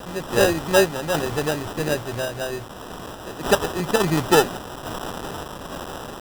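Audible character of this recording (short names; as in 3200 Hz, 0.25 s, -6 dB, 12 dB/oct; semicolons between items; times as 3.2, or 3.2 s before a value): a quantiser's noise floor 6-bit, dither triangular; random-step tremolo; aliases and images of a low sample rate 2200 Hz, jitter 0%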